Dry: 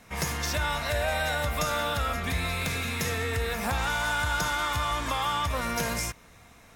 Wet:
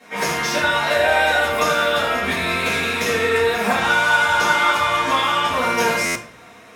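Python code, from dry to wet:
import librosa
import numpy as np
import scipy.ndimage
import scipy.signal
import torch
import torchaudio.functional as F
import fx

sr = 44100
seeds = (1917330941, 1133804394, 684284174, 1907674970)

y = scipy.signal.sosfilt(scipy.signal.butter(2, 250.0, 'highpass', fs=sr, output='sos'), x)
y = fx.high_shelf(y, sr, hz=8700.0, db=-10.5)
y = y + 10.0 ** (-12.0 / 20.0) * np.pad(y, (int(77 * sr / 1000.0), 0))[:len(y)]
y = fx.room_shoebox(y, sr, seeds[0], volume_m3=45.0, walls='mixed', distance_m=2.2)
y = fx.buffer_glitch(y, sr, at_s=(6.05,), block=512, repeats=8)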